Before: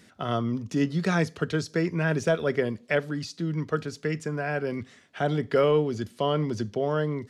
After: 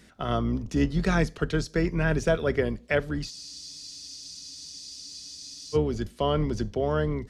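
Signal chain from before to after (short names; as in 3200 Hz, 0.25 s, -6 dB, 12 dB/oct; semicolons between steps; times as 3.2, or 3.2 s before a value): octaver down 2 oct, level -4 dB; spectral freeze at 3.33, 2.41 s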